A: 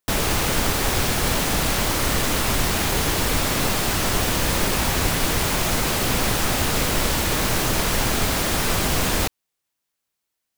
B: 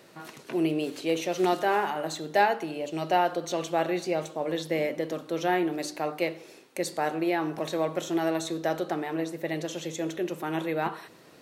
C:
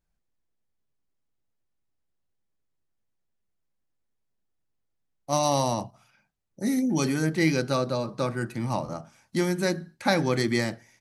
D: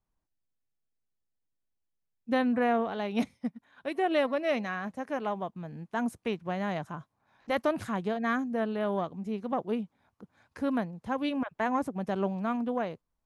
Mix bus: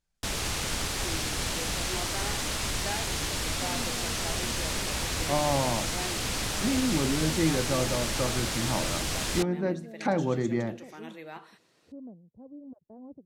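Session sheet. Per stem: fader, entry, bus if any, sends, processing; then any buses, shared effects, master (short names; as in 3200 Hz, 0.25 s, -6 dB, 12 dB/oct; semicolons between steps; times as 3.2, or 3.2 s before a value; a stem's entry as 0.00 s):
-13.0 dB, 0.15 s, no send, bell 60 Hz +4 dB 2.4 oct
-15.5 dB, 0.50 s, no send, dry
-2.5 dB, 0.00 s, no send, treble ducked by the level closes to 940 Hz, closed at -25 dBFS
-14.0 dB, 1.30 s, no send, inverse Chebyshev low-pass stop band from 3100 Hz, stop band 80 dB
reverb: off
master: LPF 8900 Hz 12 dB/oct; high shelf 2200 Hz +9 dB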